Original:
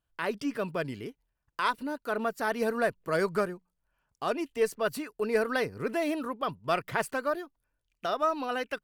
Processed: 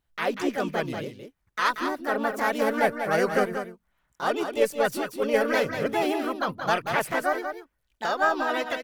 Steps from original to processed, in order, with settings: echo 0.187 s -7.5 dB; harmoniser +4 st -1 dB, +5 st -17 dB; gain +1.5 dB

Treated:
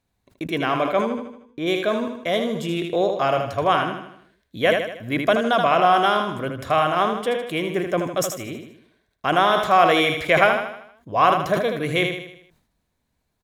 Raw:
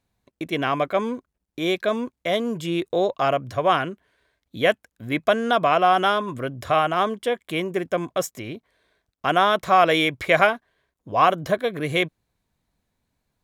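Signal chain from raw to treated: 1.05–1.66 LPF 3800 Hz -> 1800 Hz 6 dB/oct; feedback echo 78 ms, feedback 48%, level -7 dB; sustainer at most 81 dB/s

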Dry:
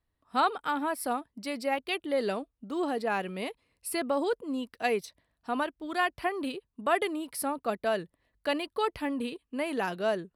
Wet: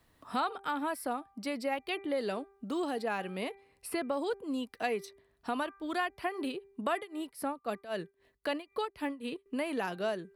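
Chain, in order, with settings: de-hum 394.7 Hz, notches 6; 6.95–9.46 tremolo 3.8 Hz, depth 89%; three-band squash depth 70%; gain -4 dB

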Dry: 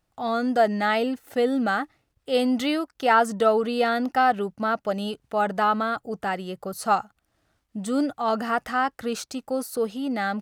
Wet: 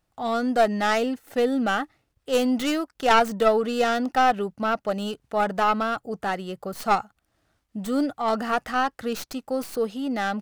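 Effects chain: tracing distortion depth 0.15 ms

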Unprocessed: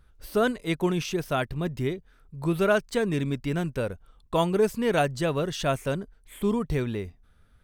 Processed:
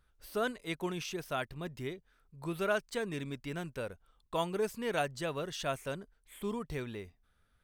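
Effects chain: low shelf 450 Hz -7.5 dB; gain -6.5 dB

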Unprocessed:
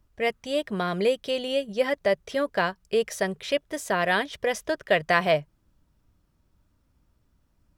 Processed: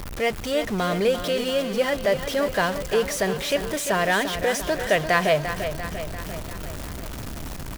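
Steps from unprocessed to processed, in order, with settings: zero-crossing step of -27.5 dBFS; feedback echo 0.345 s, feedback 59%, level -9.5 dB

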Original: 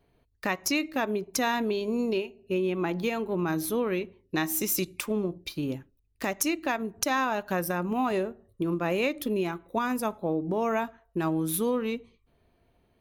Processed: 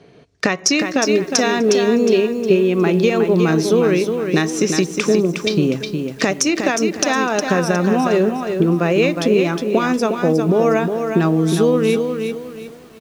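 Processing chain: 4.5–5.59 high shelf 4100 Hz -9.5 dB; compressor 4:1, threshold -37 dBFS, peak gain reduction 12.5 dB; speaker cabinet 150–7600 Hz, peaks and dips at 160 Hz +7 dB, 440 Hz +5 dB, 920 Hz -6 dB, 5600 Hz +6 dB; outdoor echo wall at 43 m, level -23 dB; maximiser +21.5 dB; lo-fi delay 0.361 s, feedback 35%, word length 7-bit, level -6 dB; gain -1 dB

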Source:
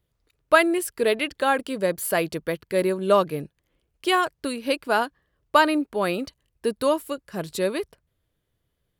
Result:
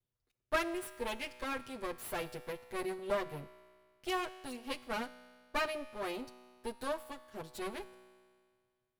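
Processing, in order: minimum comb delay 8.1 ms; resonator 62 Hz, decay 1.9 s, harmonics all, mix 60%; gain -7 dB

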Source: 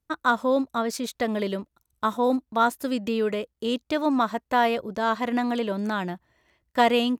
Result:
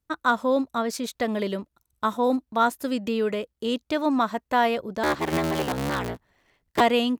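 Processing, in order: 5.03–6.81 cycle switcher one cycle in 3, inverted

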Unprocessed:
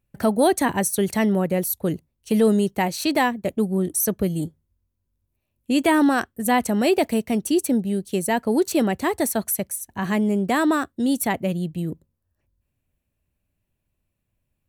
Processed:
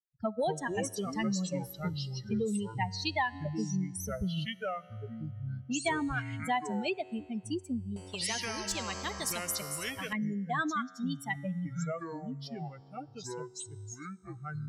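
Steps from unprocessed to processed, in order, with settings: per-bin expansion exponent 3; resonator 93 Hz, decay 1.8 s, harmonics all, mix 40%; compressor 4:1, threshold -31 dBFS, peak gain reduction 9.5 dB; dynamic EQ 310 Hz, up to -7 dB, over -47 dBFS, Q 0.84; echoes that change speed 0.145 s, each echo -6 st, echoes 2, each echo -6 dB; LPF 5500 Hz 12 dB/oct; 7.96–10.13 spectral compressor 4:1; gain +5.5 dB

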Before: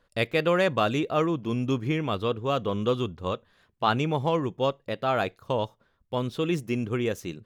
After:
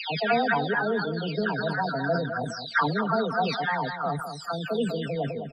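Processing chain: spectral delay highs early, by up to 0.856 s; dynamic EQ 1100 Hz, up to +6 dB, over -47 dBFS, Q 3.6; loudest bins only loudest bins 32; on a send: feedback echo 0.281 s, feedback 19%, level -9 dB; on the sum: speed mistake 33 rpm record played at 45 rpm; sustainer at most 55 dB/s

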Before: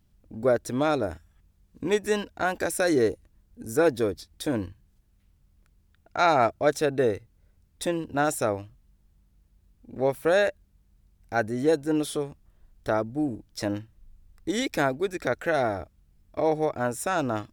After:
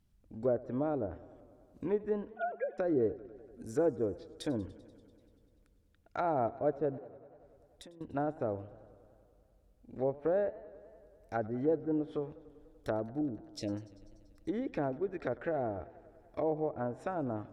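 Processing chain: 2.31–2.78 sine-wave speech; 13.21–13.69 Chebyshev band-stop 520–2700 Hz, order 2; treble ducked by the level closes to 700 Hz, closed at -22.5 dBFS; 6.97–8.01 compressor 16:1, threshold -44 dBFS, peak gain reduction 24.5 dB; warbling echo 97 ms, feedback 77%, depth 112 cents, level -20.5 dB; gain -7 dB

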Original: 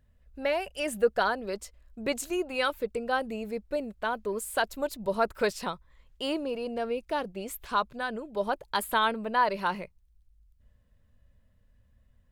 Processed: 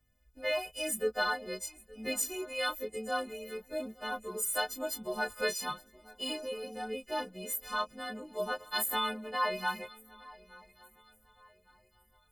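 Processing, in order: frequency quantiser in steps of 3 st; swung echo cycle 1.16 s, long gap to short 3:1, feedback 34%, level -22 dB; chorus 1 Hz, delay 18.5 ms, depth 2.5 ms; gain -3.5 dB

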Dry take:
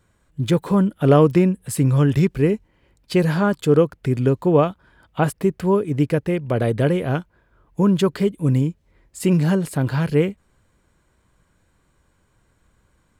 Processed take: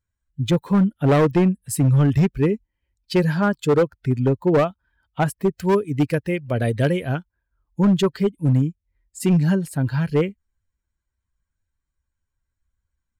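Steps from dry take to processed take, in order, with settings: per-bin expansion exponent 1.5; hard clip -14.5 dBFS, distortion -13 dB; 5.56–7.15 high shelf 2800 Hz +9.5 dB; gain +2.5 dB

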